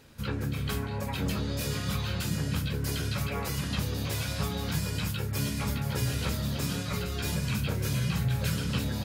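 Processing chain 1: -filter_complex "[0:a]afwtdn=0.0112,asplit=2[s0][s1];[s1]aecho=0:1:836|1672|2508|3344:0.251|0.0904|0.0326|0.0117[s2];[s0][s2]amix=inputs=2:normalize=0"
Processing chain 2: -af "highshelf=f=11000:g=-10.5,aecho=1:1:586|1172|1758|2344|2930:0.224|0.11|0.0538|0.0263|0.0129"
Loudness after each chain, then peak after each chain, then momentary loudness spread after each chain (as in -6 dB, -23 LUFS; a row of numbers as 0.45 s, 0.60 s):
-32.0 LUFS, -31.0 LUFS; -17.5 dBFS, -16.5 dBFS; 3 LU, 3 LU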